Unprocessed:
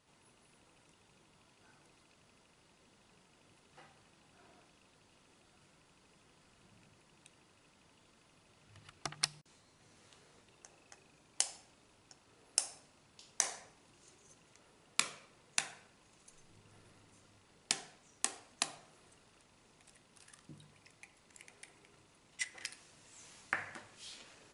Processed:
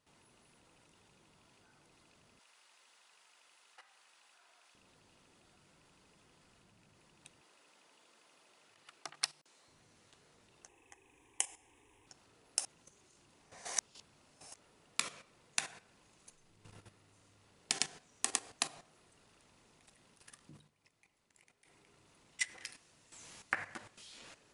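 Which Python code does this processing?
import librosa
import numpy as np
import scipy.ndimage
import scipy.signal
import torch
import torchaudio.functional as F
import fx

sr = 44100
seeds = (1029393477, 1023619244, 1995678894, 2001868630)

y = fx.highpass(x, sr, hz=950.0, slope=12, at=(2.39, 4.75))
y = fx.highpass(y, sr, hz=390.0, slope=12, at=(7.41, 9.68))
y = fx.fixed_phaser(y, sr, hz=920.0, stages=8, at=(10.68, 12.07))
y = fx.echo_single(y, sr, ms=107, db=-3.5, at=(16.47, 18.57))
y = fx.edit(y, sr, fx.reverse_span(start_s=12.65, length_s=1.89),
    fx.fade_down_up(start_s=20.55, length_s=1.27, db=-9.0, fade_s=0.13), tone=tone)
y = fx.level_steps(y, sr, step_db=12)
y = y * 10.0 ** (5.0 / 20.0)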